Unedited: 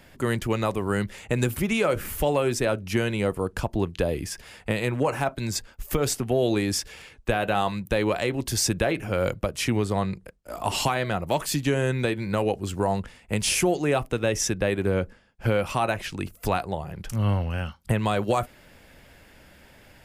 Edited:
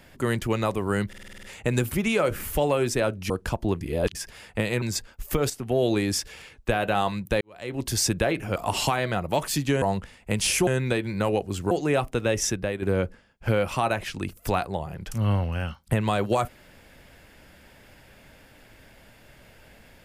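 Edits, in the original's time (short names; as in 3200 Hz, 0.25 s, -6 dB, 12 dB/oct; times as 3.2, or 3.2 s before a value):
1.08 stutter 0.05 s, 8 plays
2.95–3.41 cut
3.92–4.26 reverse
4.93–5.42 cut
6.1–6.37 fade in, from -12.5 dB
8.01–8.42 fade in quadratic
9.16–10.54 cut
12.84–13.69 move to 11.8
14.43–14.8 fade out, to -8 dB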